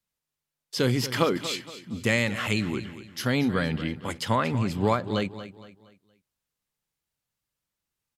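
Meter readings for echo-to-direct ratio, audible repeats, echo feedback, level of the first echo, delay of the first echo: −13.0 dB, 3, 38%, −13.5 dB, 233 ms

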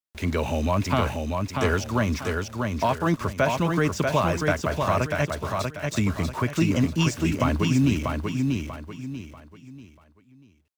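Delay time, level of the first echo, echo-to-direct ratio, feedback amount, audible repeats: 640 ms, −4.0 dB, −3.5 dB, 33%, 4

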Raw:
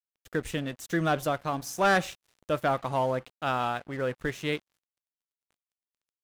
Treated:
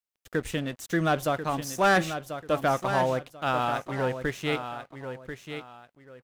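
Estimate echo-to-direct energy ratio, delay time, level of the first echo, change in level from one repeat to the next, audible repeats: −8.5 dB, 1,039 ms, −9.0 dB, −11.5 dB, 2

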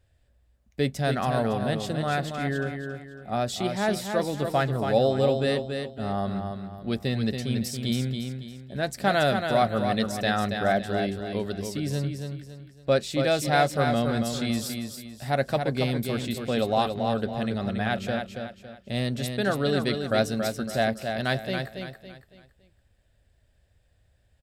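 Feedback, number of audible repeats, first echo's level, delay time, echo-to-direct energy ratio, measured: 36%, 4, −6.0 dB, 279 ms, −5.5 dB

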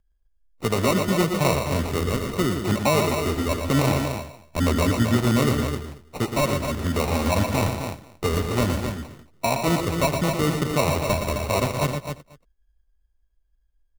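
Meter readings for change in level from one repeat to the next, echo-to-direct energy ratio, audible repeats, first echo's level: repeats not evenly spaced, −3.5 dB, 6, −16.5 dB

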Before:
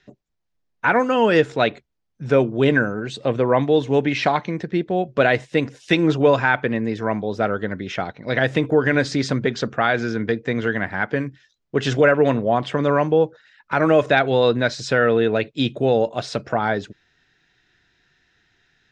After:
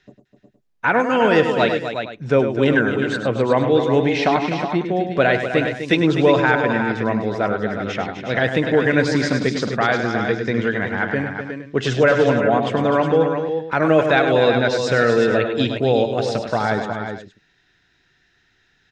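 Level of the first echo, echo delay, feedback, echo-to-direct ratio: −8.5 dB, 101 ms, repeats not evenly spaced, −3.5 dB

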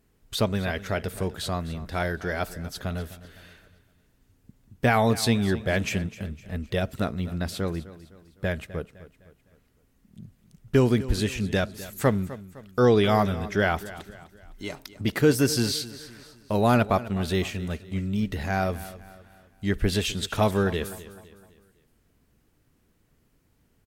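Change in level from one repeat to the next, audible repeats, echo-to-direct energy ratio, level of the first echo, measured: −7.5 dB, 3, −15.5 dB, −16.5 dB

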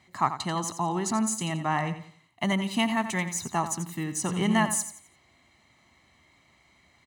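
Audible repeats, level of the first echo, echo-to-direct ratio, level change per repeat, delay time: 3, −11.0 dB, −10.5 dB, −9.5 dB, 87 ms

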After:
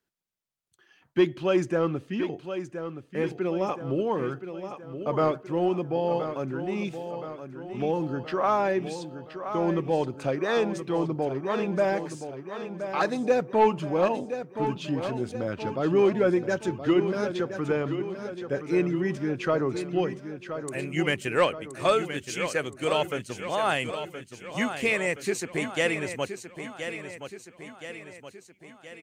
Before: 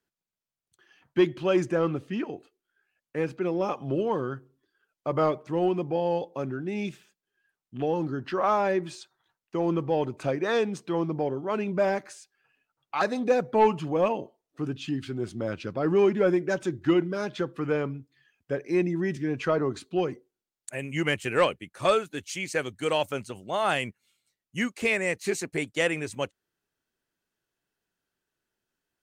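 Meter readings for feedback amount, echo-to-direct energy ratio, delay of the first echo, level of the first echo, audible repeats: 53%, −8.0 dB, 1,022 ms, −9.5 dB, 5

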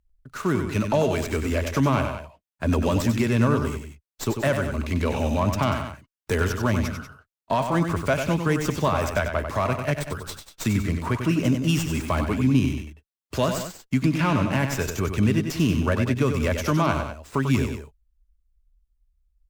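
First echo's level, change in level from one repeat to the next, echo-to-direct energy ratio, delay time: −7.0 dB, −5.0 dB, −6.0 dB, 95 ms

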